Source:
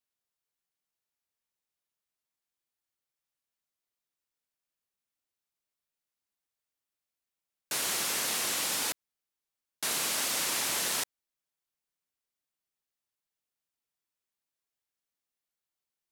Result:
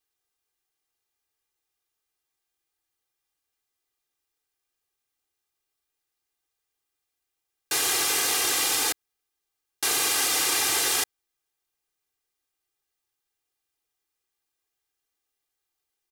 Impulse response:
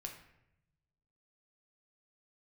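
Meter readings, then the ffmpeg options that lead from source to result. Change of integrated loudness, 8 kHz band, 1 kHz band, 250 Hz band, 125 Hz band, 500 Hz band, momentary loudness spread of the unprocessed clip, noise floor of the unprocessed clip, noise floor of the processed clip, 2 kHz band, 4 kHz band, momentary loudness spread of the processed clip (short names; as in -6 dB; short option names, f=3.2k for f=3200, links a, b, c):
+6.5 dB, +6.5 dB, +7.0 dB, +5.5 dB, +2.5 dB, +6.5 dB, 7 LU, under -85 dBFS, -83 dBFS, +7.0 dB, +7.0 dB, 7 LU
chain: -af "aecho=1:1:2.5:0.81,volume=4.5dB"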